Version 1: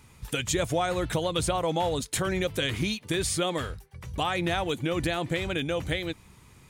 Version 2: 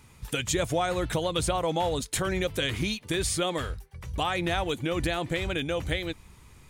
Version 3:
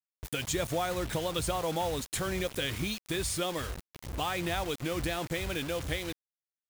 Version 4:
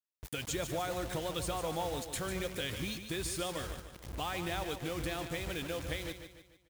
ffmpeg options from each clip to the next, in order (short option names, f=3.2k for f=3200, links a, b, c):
-af "asubboost=boost=2.5:cutoff=73"
-af "acrusher=bits=5:mix=0:aa=0.000001,volume=-4.5dB"
-af "aecho=1:1:148|296|444|592|740:0.355|0.156|0.0687|0.0302|0.0133,volume=-5dB"